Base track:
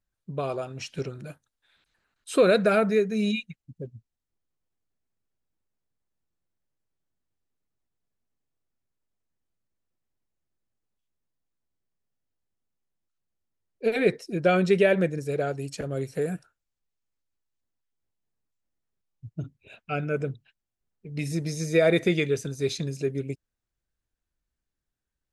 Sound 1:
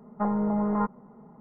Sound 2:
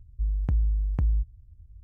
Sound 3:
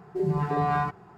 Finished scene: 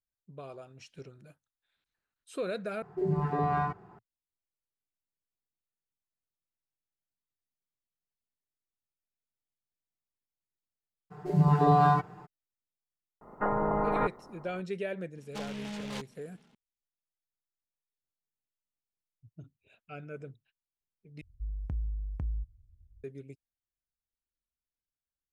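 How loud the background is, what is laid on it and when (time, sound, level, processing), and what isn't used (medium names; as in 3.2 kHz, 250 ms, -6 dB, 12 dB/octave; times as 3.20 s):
base track -15 dB
2.82 s: replace with 3 -3 dB + treble shelf 2.9 kHz -9.5 dB
11.10 s: add 3 -1 dB, fades 0.02 s + comb 6.6 ms, depth 94%
13.21 s: add 1 -2.5 dB + spectral peaks clipped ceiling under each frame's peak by 21 dB
15.15 s: add 1 -13.5 dB + delay time shaken by noise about 2.3 kHz, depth 0.17 ms
21.21 s: replace with 2 -10 dB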